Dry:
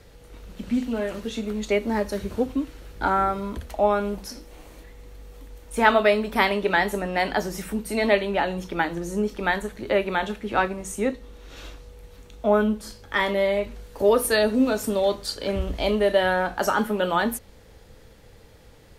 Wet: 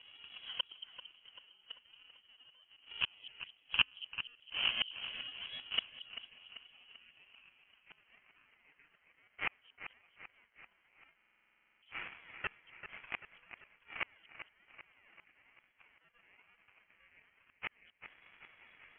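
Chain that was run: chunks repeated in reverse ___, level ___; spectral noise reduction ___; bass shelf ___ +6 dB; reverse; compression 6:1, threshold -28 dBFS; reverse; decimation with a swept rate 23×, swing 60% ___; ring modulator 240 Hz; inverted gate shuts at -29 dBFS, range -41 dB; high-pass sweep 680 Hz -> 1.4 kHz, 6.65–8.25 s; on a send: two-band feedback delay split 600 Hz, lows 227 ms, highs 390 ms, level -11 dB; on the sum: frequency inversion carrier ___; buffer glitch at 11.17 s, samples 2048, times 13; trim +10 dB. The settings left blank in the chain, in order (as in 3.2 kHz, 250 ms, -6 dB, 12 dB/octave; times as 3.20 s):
407 ms, -3 dB, 14 dB, 71 Hz, 1.1 Hz, 3.6 kHz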